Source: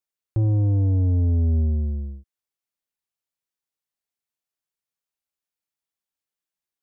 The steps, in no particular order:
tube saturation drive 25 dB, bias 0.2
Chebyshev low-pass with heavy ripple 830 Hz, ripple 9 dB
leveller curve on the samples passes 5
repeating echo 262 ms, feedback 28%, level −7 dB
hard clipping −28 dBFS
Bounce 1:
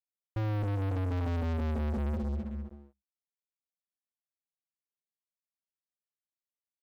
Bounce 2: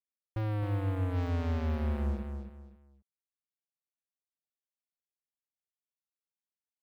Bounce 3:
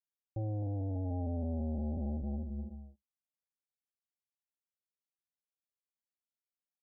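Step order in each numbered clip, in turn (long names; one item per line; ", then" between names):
tube saturation, then repeating echo, then hard clipping, then Chebyshev low-pass with heavy ripple, then leveller curve on the samples
hard clipping, then tube saturation, then Chebyshev low-pass with heavy ripple, then leveller curve on the samples, then repeating echo
repeating echo, then tube saturation, then hard clipping, then leveller curve on the samples, then Chebyshev low-pass with heavy ripple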